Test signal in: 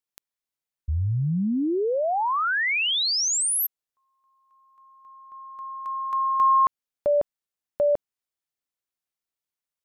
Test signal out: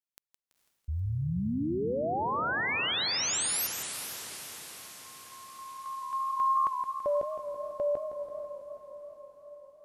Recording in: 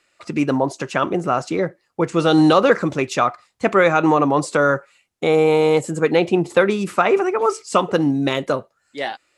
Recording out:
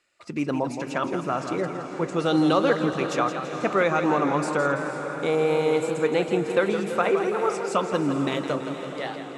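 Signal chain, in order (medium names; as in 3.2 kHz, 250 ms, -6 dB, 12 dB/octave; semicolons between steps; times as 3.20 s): echo that smears into a reverb 469 ms, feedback 61%, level -10 dB; short-mantissa float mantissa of 8-bit; modulated delay 166 ms, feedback 55%, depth 122 cents, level -9 dB; trim -7.5 dB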